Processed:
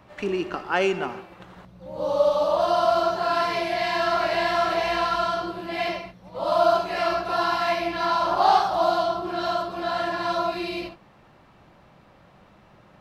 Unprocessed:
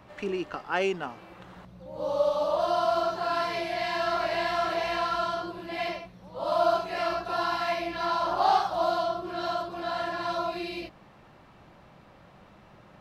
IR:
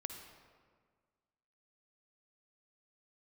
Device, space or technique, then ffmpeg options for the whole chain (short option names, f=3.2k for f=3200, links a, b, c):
keyed gated reverb: -filter_complex "[0:a]asplit=3[a][b][c];[1:a]atrim=start_sample=2205[d];[b][d]afir=irnorm=-1:irlink=0[e];[c]apad=whole_len=573439[f];[e][f]sidechaingate=range=-33dB:threshold=-45dB:ratio=16:detection=peak,volume=0dB[g];[a][g]amix=inputs=2:normalize=0"